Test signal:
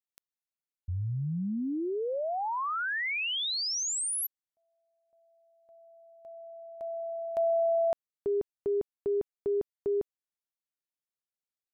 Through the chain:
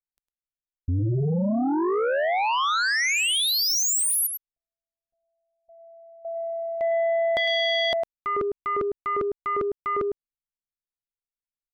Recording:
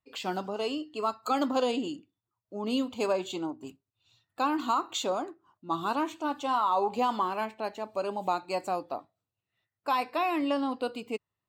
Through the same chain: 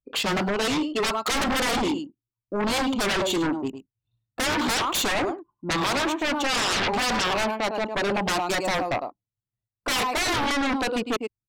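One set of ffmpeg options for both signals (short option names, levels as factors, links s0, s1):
-filter_complex "[0:a]anlmdn=0.0398,asplit=2[s0][s1];[s1]adelay=105,volume=0.251,highshelf=f=4000:g=-2.36[s2];[s0][s2]amix=inputs=2:normalize=0,aeval=exprs='0.178*sin(PI/2*7.08*val(0)/0.178)':c=same,volume=0.501"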